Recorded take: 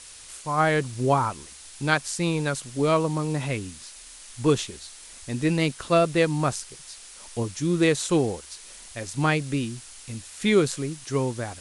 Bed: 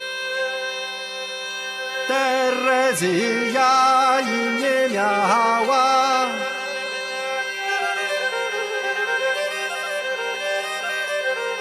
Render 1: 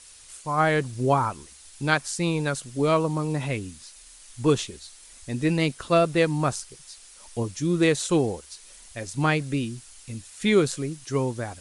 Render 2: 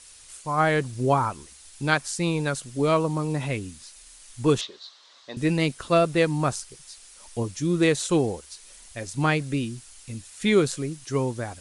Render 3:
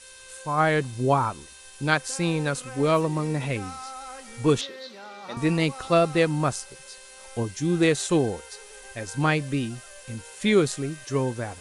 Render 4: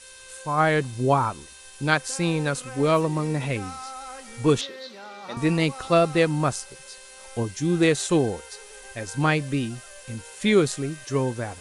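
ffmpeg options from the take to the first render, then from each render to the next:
-af "afftdn=nr=6:nf=-45"
-filter_complex "[0:a]asettb=1/sr,asplit=3[a][b][c];[a]atrim=end=4.614[d];[b]atrim=start=4.61:end=5.37,asetpts=PTS-STARTPTS,afade=t=in:d=0.004:c=qsin,afade=t=out:st=0.756:d=0.004:c=qsin,highpass=450,equalizer=f=590:t=q:w=4:g=4,equalizer=f=1.1k:t=q:w=4:g=9,equalizer=f=2.4k:t=q:w=4:g=-7,equalizer=f=3.8k:t=q:w=4:g=7,lowpass=f=5k:w=0.5412,lowpass=f=5k:w=1.3066[e];[c]atrim=start=5.366[f];[d][e]acrossfade=d=0.004:c1=hsin:c2=qsin[g];[g][f]acrossfade=d=0.004:c1=qsin:c2=hsin"
-filter_complex "[1:a]volume=-23dB[a];[0:a][a]amix=inputs=2:normalize=0"
-af "volume=1dB"

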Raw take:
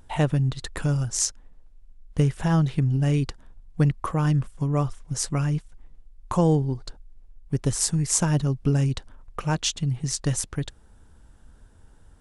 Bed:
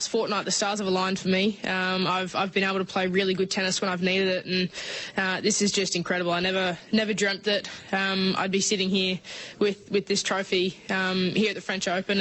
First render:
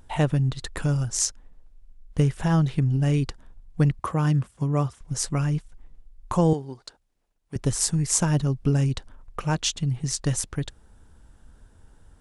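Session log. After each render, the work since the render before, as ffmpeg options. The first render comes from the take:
-filter_complex "[0:a]asettb=1/sr,asplit=3[a][b][c];[a]atrim=end=3.994[d];[b]atrim=start=3.99:end=5.01,asetpts=PTS-STARTPTS,afade=t=in:d=0.004:c=qsin,afade=t=out:st=1.016:d=0.004:c=qsin,highpass=f=61:w=0.5412,highpass=f=61:w=1.3066[e];[c]atrim=start=5.006[f];[d][e]acrossfade=d=0.004:c1=hsin:c2=qsin[g];[g][f]acrossfade=d=0.004:c1=qsin:c2=hsin,asettb=1/sr,asplit=3[h][i][j];[h]atrim=end=6.534[k];[i]atrim=start=6.53:end=7.56,asetpts=PTS-STARTPTS,afade=t=in:d=0.004:c=qsin,afade=t=out:st=1.026:d=0.004:c=qsin,highpass=f=610:p=1[l];[j]atrim=start=7.556[m];[k][l]acrossfade=d=0.004:c1=hsin:c2=qsin[n];[n][m]acrossfade=d=0.004:c1=qsin:c2=hsin"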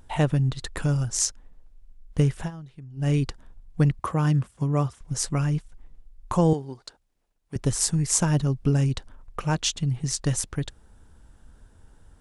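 -filter_complex "[0:a]asplit=3[a][b][c];[a]atrim=end=2.51,asetpts=PTS-STARTPTS,afade=t=out:st=2.34:d=0.17:c=qsin:silence=0.1[d];[b]atrim=start=2.51:end=2.96,asetpts=PTS-STARTPTS,volume=-20dB[e];[c]atrim=start=2.96,asetpts=PTS-STARTPTS,afade=t=in:d=0.17:c=qsin:silence=0.1[f];[d][e][f]concat=n=3:v=0:a=1"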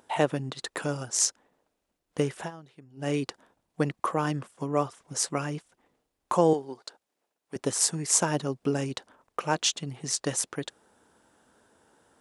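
-af "highpass=300,equalizer=f=580:t=o:w=2.2:g=3"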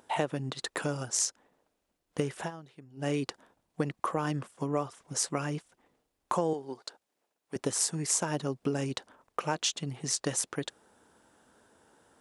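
-af "acompressor=threshold=-26dB:ratio=4"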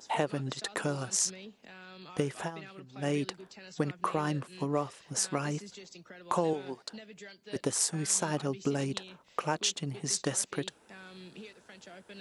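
-filter_complex "[1:a]volume=-24dB[a];[0:a][a]amix=inputs=2:normalize=0"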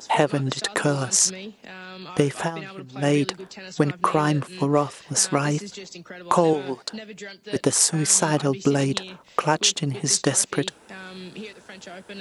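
-af "volume=10.5dB,alimiter=limit=-1dB:level=0:latency=1"

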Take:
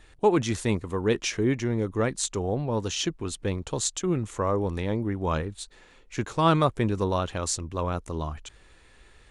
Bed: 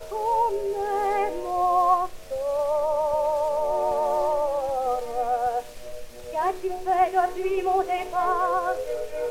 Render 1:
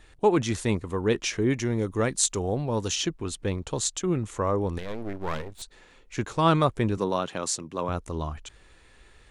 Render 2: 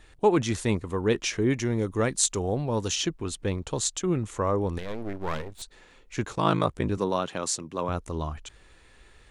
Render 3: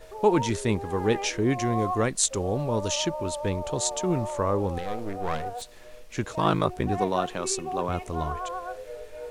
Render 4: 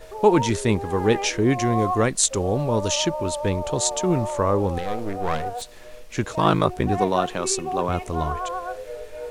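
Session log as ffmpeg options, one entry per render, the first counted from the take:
-filter_complex "[0:a]asettb=1/sr,asplit=3[a][b][c];[a]atrim=end=1.504[d];[b]atrim=start=1.5:end=2.96,asetpts=PTS-STARTPTS,afade=t=in:d=0.004:c=qsin,afade=t=out:st=1.456:d=0.004:c=qsin,highshelf=f=4.9k:g=8.5[e];[c]atrim=start=2.956[f];[d][e]acrossfade=d=0.004:c1=hsin:c2=qsin[g];[g][f]acrossfade=d=0.004:c1=qsin:c2=hsin,asettb=1/sr,asplit=3[h][i][j];[h]atrim=end=4.784[k];[i]atrim=start=4.78:end=5.62,asetpts=PTS-STARTPTS,afade=t=in:d=0.004:c=qsin,afade=t=out:st=0.836:d=0.004:c=qsin,aeval=exprs='max(val(0),0)':c=same[l];[j]atrim=start=5.616[m];[k][l]acrossfade=d=0.004:c1=hsin:c2=qsin[n];[n][m]acrossfade=d=0.004:c1=qsin:c2=hsin,asettb=1/sr,asplit=3[o][p][q];[o]atrim=end=6.974[r];[p]atrim=start=6.97:end=7.89,asetpts=PTS-STARTPTS,afade=t=in:d=0.004:c=qsin,afade=t=out:st=0.916:d=0.004:c=qsin,highpass=f=140:w=0.5412,highpass=f=140:w=1.3066[s];[q]atrim=start=7.886[t];[r][s]acrossfade=d=0.004:c1=hsin:c2=qsin[u];[u][t]acrossfade=d=0.004:c1=qsin:c2=hsin"
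-filter_complex "[0:a]asplit=3[a][b][c];[a]afade=t=out:st=6.35:d=0.02[d];[b]aeval=exprs='val(0)*sin(2*PI*27*n/s)':c=same,afade=t=in:st=6.35:d=0.02,afade=t=out:st=6.89:d=0.02[e];[c]afade=t=in:st=6.89:d=0.02[f];[d][e][f]amix=inputs=3:normalize=0"
-filter_complex "[1:a]volume=-10dB[a];[0:a][a]amix=inputs=2:normalize=0"
-af "volume=4.5dB,alimiter=limit=-3dB:level=0:latency=1"

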